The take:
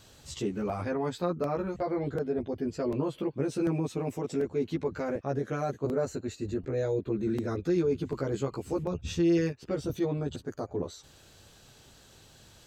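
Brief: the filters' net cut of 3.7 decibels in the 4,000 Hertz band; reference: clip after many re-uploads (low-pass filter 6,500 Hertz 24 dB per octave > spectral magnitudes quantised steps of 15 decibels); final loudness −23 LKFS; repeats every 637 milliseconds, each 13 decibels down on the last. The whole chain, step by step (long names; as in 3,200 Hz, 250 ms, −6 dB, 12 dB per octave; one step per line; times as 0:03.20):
low-pass filter 6,500 Hz 24 dB per octave
parametric band 4,000 Hz −4.5 dB
repeating echo 637 ms, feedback 22%, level −13 dB
spectral magnitudes quantised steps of 15 dB
level +9 dB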